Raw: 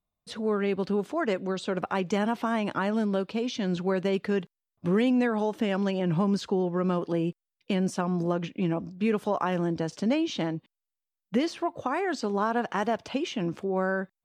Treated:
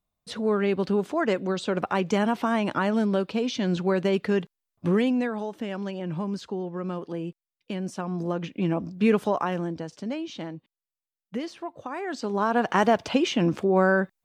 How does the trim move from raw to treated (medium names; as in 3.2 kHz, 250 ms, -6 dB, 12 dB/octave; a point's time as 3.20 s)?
4.86 s +3 dB
5.47 s -5 dB
7.82 s -5 dB
9.11 s +5.5 dB
9.91 s -6 dB
11.88 s -6 dB
12.76 s +7 dB